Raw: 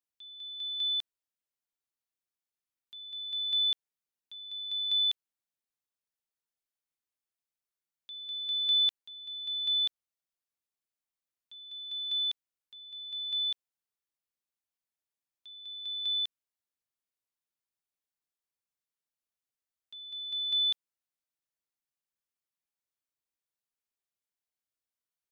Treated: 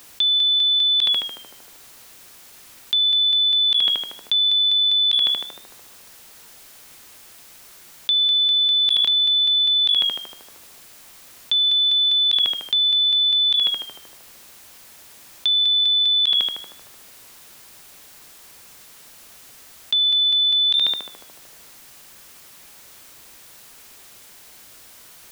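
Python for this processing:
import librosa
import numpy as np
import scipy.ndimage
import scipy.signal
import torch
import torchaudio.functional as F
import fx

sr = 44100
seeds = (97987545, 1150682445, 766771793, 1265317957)

p1 = fx.highpass(x, sr, hz=fx.line((15.59, 1000.0), (16.15, 1200.0)), slope=12, at=(15.59, 16.15), fade=0.02)
p2 = p1 + fx.echo_tape(p1, sr, ms=74, feedback_pct=82, wet_db=-18.0, lp_hz=2000.0, drive_db=22.0, wow_cents=35, dry=0)
p3 = fx.env_flatten(p2, sr, amount_pct=100)
y = F.gain(torch.from_numpy(p3), 7.0).numpy()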